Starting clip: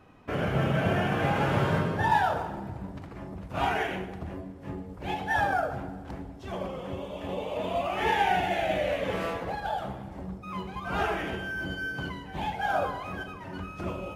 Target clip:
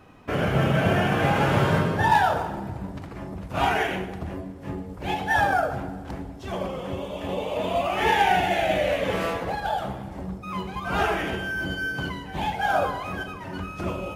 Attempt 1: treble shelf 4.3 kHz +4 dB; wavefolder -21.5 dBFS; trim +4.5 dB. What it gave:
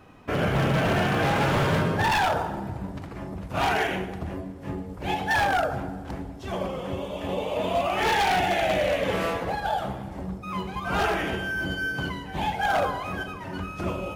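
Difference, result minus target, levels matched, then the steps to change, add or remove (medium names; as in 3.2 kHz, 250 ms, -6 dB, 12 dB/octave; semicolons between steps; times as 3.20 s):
wavefolder: distortion +26 dB
change: wavefolder -14.5 dBFS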